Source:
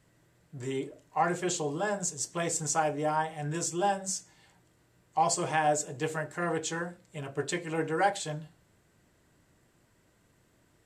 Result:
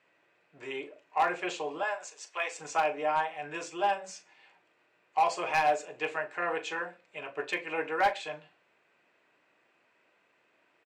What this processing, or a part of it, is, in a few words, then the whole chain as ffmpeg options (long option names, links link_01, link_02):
megaphone: -filter_complex "[0:a]highpass=520,lowpass=3000,equalizer=frequency=2500:width_type=o:width=0.24:gain=11.5,asoftclip=type=hard:threshold=-21dB,asplit=2[link_01][link_02];[link_02]adelay=39,volume=-13.5dB[link_03];[link_01][link_03]amix=inputs=2:normalize=0,asettb=1/sr,asplit=3[link_04][link_05][link_06];[link_04]atrim=end=1.834[link_07];[link_05]atrim=start=1.83:end=2.59,asetpts=PTS-STARTPTS,afade=type=in:duration=0.004:curve=qsin,afade=type=out:start_time=0.756:duration=0.004:curve=qsin,highpass=680[link_08];[link_06]atrim=start=2.586[link_09];[link_07][link_08]acrossfade=duration=0.004:curve1=hsin:curve2=qsin[link_10];[link_10][link_09]acrossfade=duration=0.004:curve1=qsin:curve2=hsin,volume=2dB"